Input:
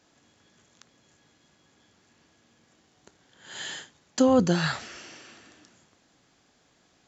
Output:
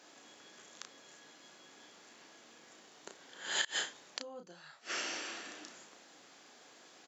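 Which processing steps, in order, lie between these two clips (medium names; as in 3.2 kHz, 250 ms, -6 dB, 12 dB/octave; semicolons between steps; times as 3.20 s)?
high-pass 350 Hz 12 dB/octave; inverted gate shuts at -25 dBFS, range -33 dB; doubling 33 ms -6 dB; trim +6 dB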